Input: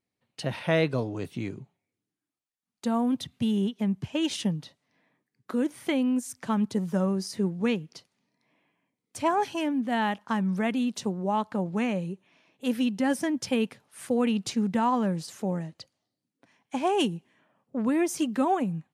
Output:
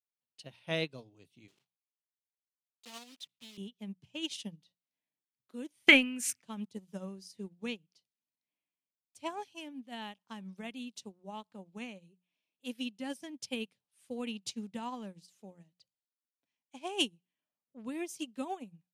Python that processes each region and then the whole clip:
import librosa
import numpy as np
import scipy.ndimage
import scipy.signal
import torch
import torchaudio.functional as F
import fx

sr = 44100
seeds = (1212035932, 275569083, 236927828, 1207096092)

y = fx.chain(x, sr, fx.block_float(bits=3),
    fx.weighting(curve='A'),
    fx.doppler_dist(depth_ms=0.11), at=(1.48, 3.58))
y = fx.chain(y, sr, fx.band_shelf(hz=1900.0, db=13.5, octaves=1.3),
    fx.transient(attack_db=3, sustain_db=10), at=(5.88, 6.42))
y = fx.high_shelf_res(y, sr, hz=2200.0, db=7.5, q=1.5)
y = fx.hum_notches(y, sr, base_hz=60, count=3)
y = fx.upward_expand(y, sr, threshold_db=-34.0, expansion=2.5)